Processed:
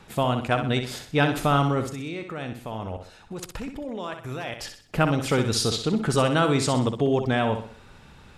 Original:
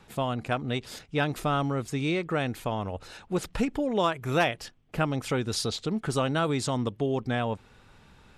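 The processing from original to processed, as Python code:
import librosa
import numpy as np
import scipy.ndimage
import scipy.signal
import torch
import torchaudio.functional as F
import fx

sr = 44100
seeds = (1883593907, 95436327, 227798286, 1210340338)

y = fx.level_steps(x, sr, step_db=19, at=(1.88, 4.58), fade=0.02)
y = fx.room_flutter(y, sr, wall_m=10.8, rt60_s=0.48)
y = F.gain(torch.from_numpy(y), 5.0).numpy()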